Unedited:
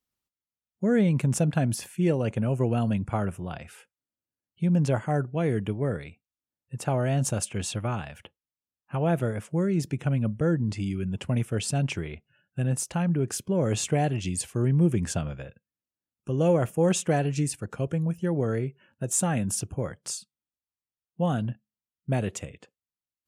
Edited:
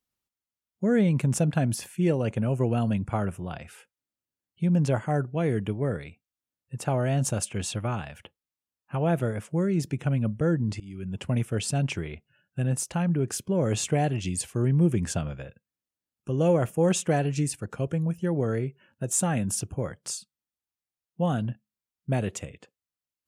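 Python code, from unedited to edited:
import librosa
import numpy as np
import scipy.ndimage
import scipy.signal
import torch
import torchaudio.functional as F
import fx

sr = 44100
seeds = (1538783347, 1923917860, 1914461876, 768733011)

y = fx.edit(x, sr, fx.fade_in_from(start_s=10.8, length_s=0.45, floor_db=-22.5), tone=tone)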